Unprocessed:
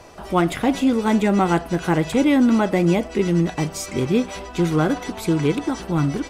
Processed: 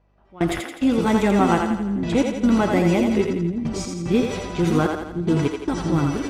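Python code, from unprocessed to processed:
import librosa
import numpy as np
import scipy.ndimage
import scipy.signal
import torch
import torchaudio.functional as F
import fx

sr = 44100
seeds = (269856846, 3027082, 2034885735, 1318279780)

p1 = fx.add_hum(x, sr, base_hz=50, snr_db=18)
p2 = fx.step_gate(p1, sr, bpm=74, pattern='..x.xxxx', floor_db=-24.0, edge_ms=4.5)
p3 = fx.env_lowpass(p2, sr, base_hz=2800.0, full_db=-18.0)
p4 = p3 + fx.echo_split(p3, sr, split_hz=330.0, low_ms=570, high_ms=84, feedback_pct=52, wet_db=-4, dry=0)
y = p4 * 10.0 ** (-1.0 / 20.0)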